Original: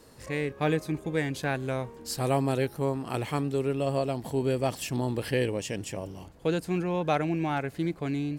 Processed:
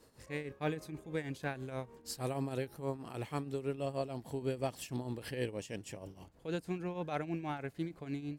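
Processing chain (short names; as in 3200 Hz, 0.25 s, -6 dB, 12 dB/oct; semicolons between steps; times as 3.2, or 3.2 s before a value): tremolo triangle 6.3 Hz, depth 75%; gain -6.5 dB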